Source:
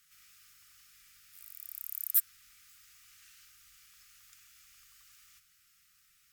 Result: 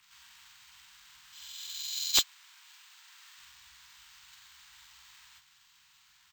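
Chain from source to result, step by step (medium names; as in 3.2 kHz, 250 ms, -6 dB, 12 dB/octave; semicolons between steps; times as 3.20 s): frequency axis rescaled in octaves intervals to 83%; 2.06–3.38 s: elliptic high-pass 930 Hz; integer overflow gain 17.5 dB; doubling 14 ms -10 dB; sample-and-hold 4×; trim +4.5 dB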